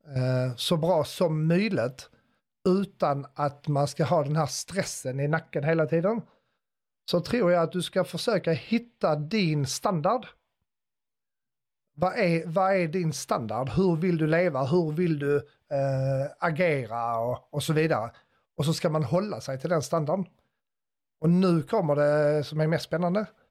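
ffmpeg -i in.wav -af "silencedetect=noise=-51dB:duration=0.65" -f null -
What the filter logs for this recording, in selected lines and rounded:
silence_start: 6.26
silence_end: 7.08 | silence_duration: 0.82
silence_start: 10.32
silence_end: 11.98 | silence_duration: 1.65
silence_start: 20.28
silence_end: 21.22 | silence_duration: 0.94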